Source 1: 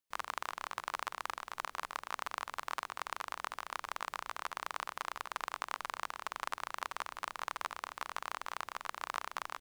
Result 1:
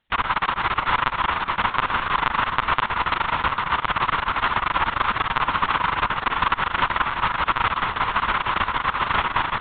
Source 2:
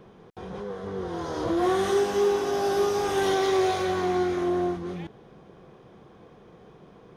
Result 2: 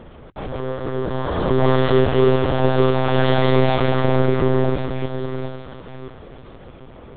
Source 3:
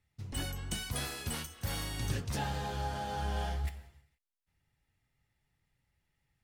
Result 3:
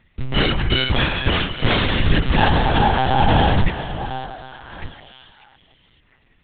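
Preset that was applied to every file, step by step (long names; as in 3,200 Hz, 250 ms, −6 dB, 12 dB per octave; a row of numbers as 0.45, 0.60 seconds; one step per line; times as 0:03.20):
delay that plays each chunk backwards 608 ms, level −12.5 dB
high-shelf EQ 2,700 Hz +9 dB
mains-hum notches 60/120 Hz
in parallel at −6.5 dB: soft clipping −27.5 dBFS
on the sum: high-frequency loss of the air 180 metres
echo through a band-pass that steps 435 ms, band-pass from 200 Hz, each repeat 1.4 octaves, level −8 dB
one-pitch LPC vocoder at 8 kHz 130 Hz
normalise the peak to −1.5 dBFS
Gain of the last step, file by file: +17.0, +6.5, +17.0 decibels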